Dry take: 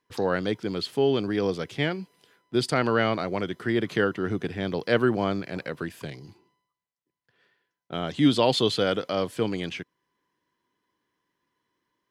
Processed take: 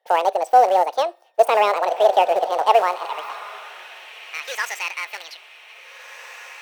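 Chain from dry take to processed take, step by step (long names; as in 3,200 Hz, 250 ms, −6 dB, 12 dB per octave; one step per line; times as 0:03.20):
octave-band graphic EQ 125/250/4,000 Hz −10/+11/−12 dB
four-comb reverb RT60 0.54 s, combs from 28 ms, DRR 20 dB
in parallel at −6 dB: comparator with hysteresis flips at −17.5 dBFS
on the sum: change of speed 1.83×
feedback delay with all-pass diffusion 1,735 ms, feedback 51%, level −11 dB
high-pass filter sweep 680 Hz → 2,100 Hz, 0:02.54–0:04.24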